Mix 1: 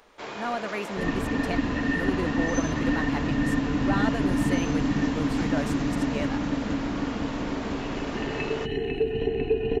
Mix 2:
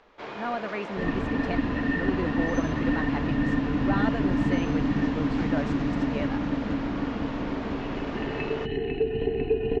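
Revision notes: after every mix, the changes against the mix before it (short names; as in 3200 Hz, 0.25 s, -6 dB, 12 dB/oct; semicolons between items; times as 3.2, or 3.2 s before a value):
master: add air absorption 170 m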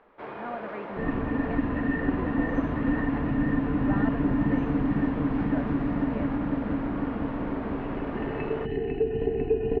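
speech -5.5 dB; master: add LPF 1800 Hz 12 dB/oct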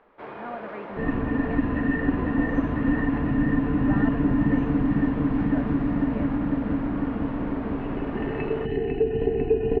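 second sound +4.0 dB; reverb: off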